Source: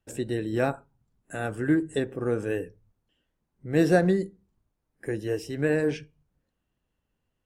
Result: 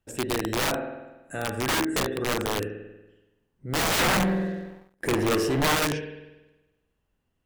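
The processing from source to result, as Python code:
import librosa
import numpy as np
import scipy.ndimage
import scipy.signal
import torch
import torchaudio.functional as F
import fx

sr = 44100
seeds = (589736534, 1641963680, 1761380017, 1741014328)

y = fx.rev_spring(x, sr, rt60_s=1.1, pass_ms=(47,), chirp_ms=55, drr_db=3.5)
y = (np.mod(10.0 ** (20.5 / 20.0) * y + 1.0, 2.0) - 1.0) / 10.0 ** (20.5 / 20.0)
y = fx.leveller(y, sr, passes=3, at=(3.99, 5.75))
y = F.gain(torch.from_numpy(y), 1.0).numpy()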